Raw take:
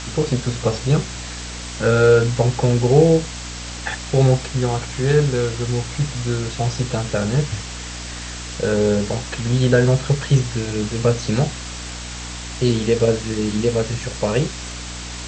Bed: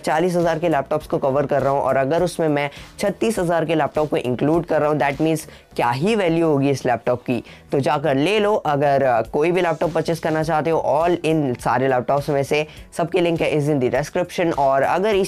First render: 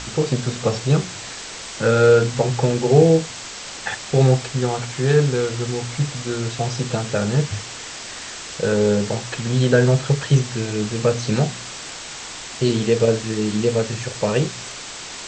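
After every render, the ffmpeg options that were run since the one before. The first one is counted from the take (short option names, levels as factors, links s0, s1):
-af "bandreject=f=60:t=h:w=4,bandreject=f=120:t=h:w=4,bandreject=f=180:t=h:w=4,bandreject=f=240:t=h:w=4,bandreject=f=300:t=h:w=4"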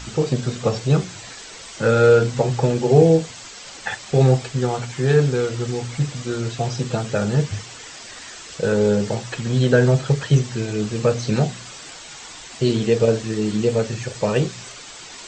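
-af "afftdn=nr=8:nf=-34"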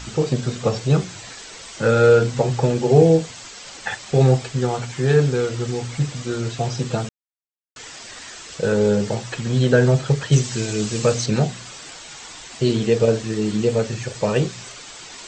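-filter_complex "[0:a]asettb=1/sr,asplit=3[s0][s1][s2];[s0]atrim=end=10.324[s3];[s1]atrim=start=10.32:end=11.26,asetpts=PTS-STARTPTS,afade=t=in:d=0.004:c=qsin,afade=t=out:st=0.936:d=0.004:c=qsin,highshelf=f=3900:g=11[s4];[s2]atrim=start=11.256[s5];[s3][s4]acrossfade=d=0.004:c1=hsin:c2=qsin[s6];[s6][s5]acrossfade=d=0.004:c1=qsin:c2=hsin,asplit=3[s7][s8][s9];[s7]atrim=end=7.09,asetpts=PTS-STARTPTS,afade=t=out:st=7.086:d=0.004:c=hsin[s10];[s8]atrim=start=7.09:end=7.76,asetpts=PTS-STARTPTS,volume=0[s11];[s9]atrim=start=7.76,asetpts=PTS-STARTPTS,afade=t=in:d=0.004:c=hsin[s12];[s10][s11][s12]concat=n=3:v=0:a=1"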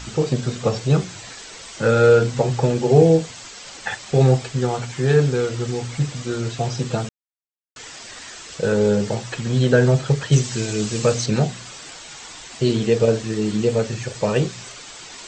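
-af anull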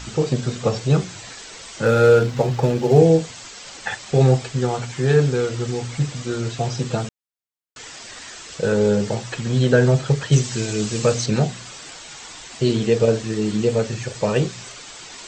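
-filter_complex "[0:a]asettb=1/sr,asplit=3[s0][s1][s2];[s0]atrim=end=1.854[s3];[s1]atrim=start=1.85:end=2.99,asetpts=PTS-STARTPTS,afade=t=in:d=0.004:c=qsin,afade=t=out:st=1.136:d=0.004:c=qsin,adynamicsmooth=sensitivity=8:basefreq=3900[s4];[s2]atrim=start=2.986[s5];[s3][s4]acrossfade=d=0.004:c1=hsin:c2=qsin[s6];[s6][s5]acrossfade=d=0.004:c1=qsin:c2=hsin"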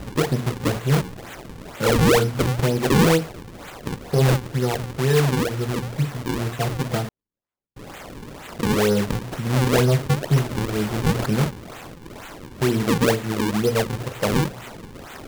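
-af "acrusher=samples=39:mix=1:aa=0.000001:lfo=1:lforange=62.4:lforate=2.1,asoftclip=type=tanh:threshold=0.299"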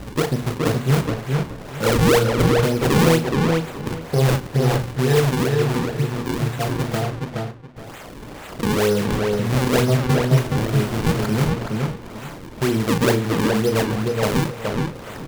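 -filter_complex "[0:a]asplit=2[s0][s1];[s1]adelay=36,volume=0.282[s2];[s0][s2]amix=inputs=2:normalize=0,asplit=2[s3][s4];[s4]adelay=421,lowpass=f=3600:p=1,volume=0.708,asplit=2[s5][s6];[s6]adelay=421,lowpass=f=3600:p=1,volume=0.23,asplit=2[s7][s8];[s8]adelay=421,lowpass=f=3600:p=1,volume=0.23[s9];[s5][s7][s9]amix=inputs=3:normalize=0[s10];[s3][s10]amix=inputs=2:normalize=0"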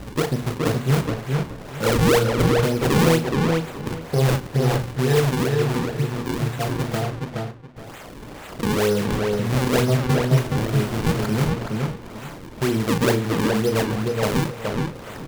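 -af "volume=0.841"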